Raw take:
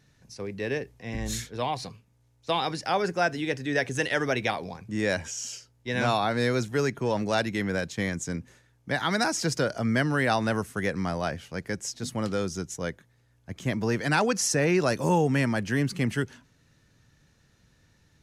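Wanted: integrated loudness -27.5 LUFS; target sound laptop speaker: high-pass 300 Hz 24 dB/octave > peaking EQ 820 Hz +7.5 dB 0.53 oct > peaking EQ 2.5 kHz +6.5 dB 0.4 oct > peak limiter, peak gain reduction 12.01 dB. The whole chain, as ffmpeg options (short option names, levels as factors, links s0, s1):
-af "highpass=f=300:w=0.5412,highpass=f=300:w=1.3066,equalizer=f=820:t=o:w=0.53:g=7.5,equalizer=f=2500:t=o:w=0.4:g=6.5,volume=1.68,alimiter=limit=0.15:level=0:latency=1"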